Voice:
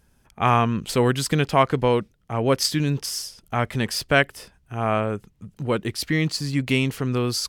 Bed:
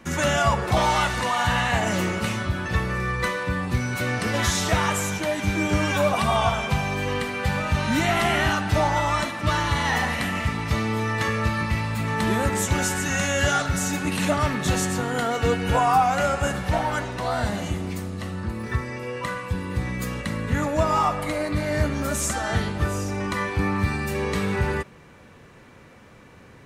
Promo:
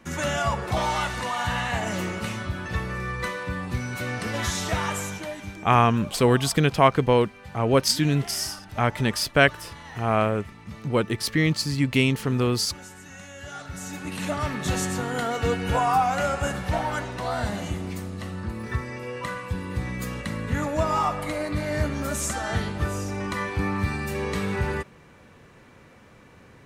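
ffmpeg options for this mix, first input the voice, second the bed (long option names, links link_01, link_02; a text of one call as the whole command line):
ffmpeg -i stem1.wav -i stem2.wav -filter_complex "[0:a]adelay=5250,volume=0.5dB[link_01];[1:a]volume=12dB,afade=type=out:start_time=4.98:duration=0.65:silence=0.188365,afade=type=in:start_time=13.45:duration=1.38:silence=0.149624[link_02];[link_01][link_02]amix=inputs=2:normalize=0" out.wav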